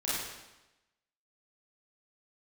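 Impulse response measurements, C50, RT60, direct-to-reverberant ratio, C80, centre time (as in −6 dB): −2.5 dB, 1.0 s, −9.5 dB, 0.5 dB, 92 ms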